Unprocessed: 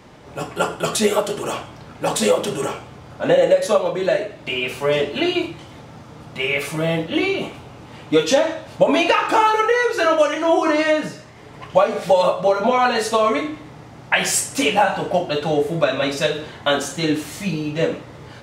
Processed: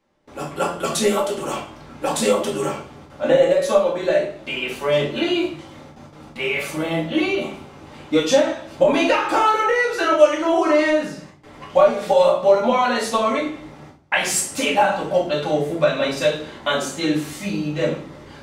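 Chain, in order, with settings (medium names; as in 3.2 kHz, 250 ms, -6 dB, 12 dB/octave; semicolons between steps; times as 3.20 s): peaking EQ 91 Hz -8 dB 1.4 oct; gate with hold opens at -32 dBFS; reverberation RT60 0.35 s, pre-delay 4 ms, DRR 0 dB; trim -4 dB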